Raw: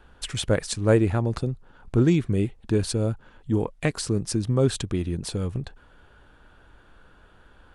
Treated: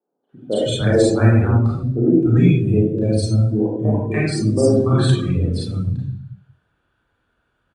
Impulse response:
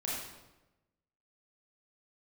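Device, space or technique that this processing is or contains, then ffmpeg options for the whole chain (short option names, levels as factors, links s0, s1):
bathroom: -filter_complex "[0:a]highpass=66,asettb=1/sr,asplit=3[s0][s1][s2];[s0]atrim=end=4.554[s3];[s1]atrim=start=4.55:end=5.31,asetpts=PTS-STARTPTS,afade=t=in:d=0.004:c=qsin,afade=t=out:st=0.756:d=0.004:c=qsin,equalizer=f=1300:t=o:w=2.7:g=5.5[s4];[s2]atrim=start=5.306[s5];[s3][s4]acrossfade=d=0.004:c1=hsin:c2=qsin[s6];[s6][s5]acrossfade=d=0.004:c1=qsin:c2=hsin[s7];[1:a]atrim=start_sample=2205[s8];[s7][s8]afir=irnorm=-1:irlink=0,afftdn=nr=20:nf=-30,acrossover=split=230|750[s9][s10][s11];[s11]adelay=290[s12];[s9]adelay=320[s13];[s13][s10][s12]amix=inputs=3:normalize=0,volume=1.78"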